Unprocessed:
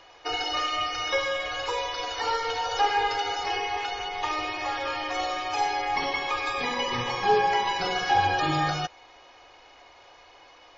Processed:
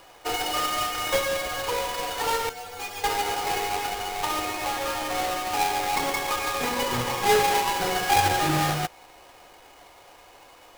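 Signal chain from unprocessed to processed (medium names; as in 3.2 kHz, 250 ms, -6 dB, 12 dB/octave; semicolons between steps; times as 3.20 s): square wave that keeps the level; 2.49–3.04 s: inharmonic resonator 88 Hz, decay 0.38 s, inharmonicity 0.008; trim -2.5 dB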